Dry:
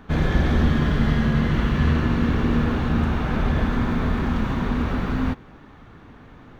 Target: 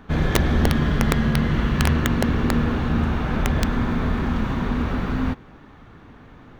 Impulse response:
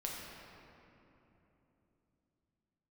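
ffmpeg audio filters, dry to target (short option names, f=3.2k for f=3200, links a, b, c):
-af "aeval=exprs='(mod(2.99*val(0)+1,2)-1)/2.99':c=same"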